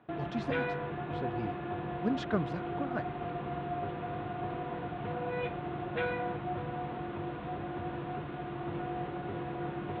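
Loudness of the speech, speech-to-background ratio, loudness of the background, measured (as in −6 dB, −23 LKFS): −38.0 LKFS, −0.5 dB, −37.5 LKFS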